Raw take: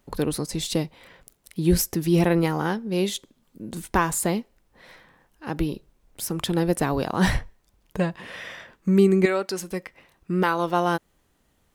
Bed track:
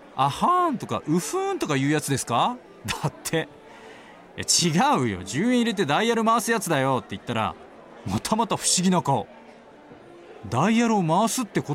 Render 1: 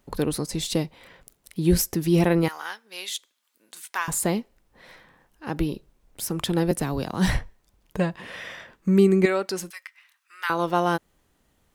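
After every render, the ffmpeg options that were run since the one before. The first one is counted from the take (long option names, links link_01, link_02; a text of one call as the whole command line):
ffmpeg -i in.wav -filter_complex "[0:a]asettb=1/sr,asplit=3[link_01][link_02][link_03];[link_01]atrim=end=2.484[link_04];[link_02]atrim=start=2.48:end=4.08,asetpts=PTS-STARTPTS,afade=type=in:duration=0.004:curve=qsin,afade=type=out:start_time=1.596:duration=0.004:curve=qsin,highpass=1400[link_05];[link_03]atrim=start=4.076[link_06];[link_04][link_05]acrossfade=duration=0.004:curve1=hsin:curve2=qsin[link_07];[link_07][link_06]acrossfade=duration=0.004:curve1=qsin:curve2=hsin,asettb=1/sr,asplit=3[link_08][link_09][link_10];[link_08]atrim=end=6.714[link_11];[link_09]atrim=start=6.71:end=7.29,asetpts=PTS-STARTPTS,afade=type=in:duration=0.004:curve=qsin,afade=type=out:start_time=0.576:duration=0.004:curve=qsin,acrossover=split=270|3000[link_12][link_13][link_14];[link_13]acompressor=threshold=-38dB:ratio=1.5:attack=3.2:release=140:knee=2.83:detection=peak[link_15];[link_12][link_15][link_14]amix=inputs=3:normalize=0[link_16];[link_10]atrim=start=7.286[link_17];[link_11][link_16]acrossfade=duration=0.004:curve1=hsin:curve2=qsin[link_18];[link_18][link_17]acrossfade=duration=0.004:curve1=qsin:curve2=hsin,asettb=1/sr,asplit=3[link_19][link_20][link_21];[link_19]atrim=end=9.704[link_22];[link_20]atrim=start=9.7:end=10.5,asetpts=PTS-STARTPTS,afade=type=in:duration=0.004:curve=qsin,afade=type=out:start_time=0.796:duration=0.004:curve=qsin,highpass=frequency=1300:width=0.5412,highpass=frequency=1300:width=1.3066[link_23];[link_21]atrim=start=10.496[link_24];[link_22][link_23]acrossfade=duration=0.004:curve1=hsin:curve2=qsin[link_25];[link_25][link_24]acrossfade=duration=0.004:curve1=qsin:curve2=hsin" out.wav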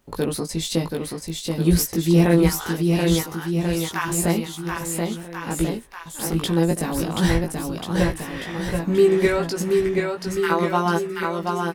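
ffmpeg -i in.wav -filter_complex "[0:a]asplit=2[link_01][link_02];[link_02]adelay=18,volume=-3dB[link_03];[link_01][link_03]amix=inputs=2:normalize=0,aecho=1:1:730|1387|1978|2510|2989:0.631|0.398|0.251|0.158|0.1" out.wav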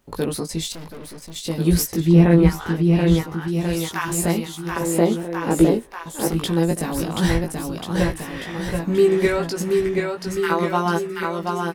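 ffmpeg -i in.wav -filter_complex "[0:a]asettb=1/sr,asplit=3[link_01][link_02][link_03];[link_01]atrim=end=0.724[link_04];[link_02]atrim=start=0.72:end=1.36,asetpts=PTS-STARTPTS,afade=type=in:duration=0.004:curve=qsin,afade=type=out:start_time=0.636:duration=0.004:curve=qsin,aeval=exprs='(tanh(56.2*val(0)+0.6)-tanh(0.6))/56.2':channel_layout=same[link_05];[link_03]atrim=start=1.356[link_06];[link_04][link_05]acrossfade=duration=0.004:curve1=hsin:curve2=qsin[link_07];[link_07][link_06]acrossfade=duration=0.004:curve1=qsin:curve2=hsin,asettb=1/sr,asplit=3[link_08][link_09][link_10];[link_08]atrim=end=2.004[link_11];[link_09]atrim=start=2:end=3.48,asetpts=PTS-STARTPTS,afade=type=in:duration=0.004:curve=qsin,afade=type=out:start_time=1.476:duration=0.004:curve=qsin,bass=frequency=250:gain=5,treble=frequency=4000:gain=-12[link_12];[link_10]atrim=start=3.476[link_13];[link_11][link_12]acrossfade=duration=0.004:curve1=hsin:curve2=qsin[link_14];[link_14][link_13]acrossfade=duration=0.004:curve1=qsin:curve2=hsin,asettb=1/sr,asplit=3[link_15][link_16][link_17];[link_15]atrim=end=4.764[link_18];[link_16]atrim=start=4.76:end=6.28,asetpts=PTS-STARTPTS,afade=type=in:duration=0.004:curve=qsin,afade=type=out:start_time=1.516:duration=0.004:curve=qsin,equalizer=frequency=420:width_type=o:width=2.2:gain=11[link_19];[link_17]atrim=start=6.276[link_20];[link_18][link_19]acrossfade=duration=0.004:curve1=hsin:curve2=qsin[link_21];[link_21][link_20]acrossfade=duration=0.004:curve1=qsin:curve2=hsin" out.wav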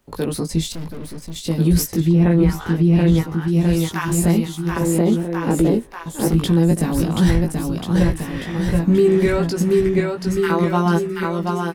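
ffmpeg -i in.wav -filter_complex "[0:a]acrossover=split=290|2600[link_01][link_02][link_03];[link_01]dynaudnorm=framelen=250:gausssize=3:maxgain=9dB[link_04];[link_04][link_02][link_03]amix=inputs=3:normalize=0,alimiter=limit=-7.5dB:level=0:latency=1:release=23" out.wav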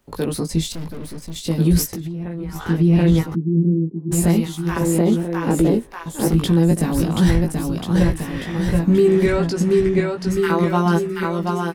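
ffmpeg -i in.wav -filter_complex "[0:a]asettb=1/sr,asplit=3[link_01][link_02][link_03];[link_01]atrim=end=1.864[link_04];[link_02]atrim=start=1.86:end=2.56,asetpts=PTS-STARTPTS,afade=type=in:duration=0.004:curve=qsin,afade=type=out:start_time=0.696:duration=0.004:curve=qsin,acompressor=threshold=-24dB:ratio=16:attack=3.2:release=140:knee=1:detection=peak[link_05];[link_03]atrim=start=2.556[link_06];[link_04][link_05]acrossfade=duration=0.004:curve1=hsin:curve2=qsin[link_07];[link_07][link_06]acrossfade=duration=0.004:curve1=qsin:curve2=hsin,asplit=3[link_08][link_09][link_10];[link_08]afade=type=out:start_time=3.34:duration=0.02[link_11];[link_09]asuperpass=centerf=240:order=8:qfactor=0.93,afade=type=in:start_time=3.34:duration=0.02,afade=type=out:start_time=4.11:duration=0.02[link_12];[link_10]afade=type=in:start_time=4.11:duration=0.02[link_13];[link_11][link_12][link_13]amix=inputs=3:normalize=0,asettb=1/sr,asplit=3[link_14][link_15][link_16];[link_14]atrim=end=9.264[link_17];[link_15]atrim=start=9.26:end=10.3,asetpts=PTS-STARTPTS,afade=type=in:duration=0.004:curve=qsin,afade=type=out:start_time=1.036:duration=0.004:curve=qsin,lowpass=9600[link_18];[link_16]atrim=start=10.296[link_19];[link_17][link_18]acrossfade=duration=0.004:curve1=hsin:curve2=qsin[link_20];[link_20][link_19]acrossfade=duration=0.004:curve1=qsin:curve2=hsin" out.wav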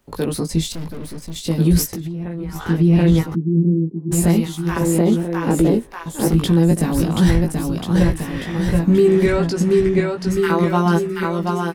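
ffmpeg -i in.wav -af "volume=1dB" out.wav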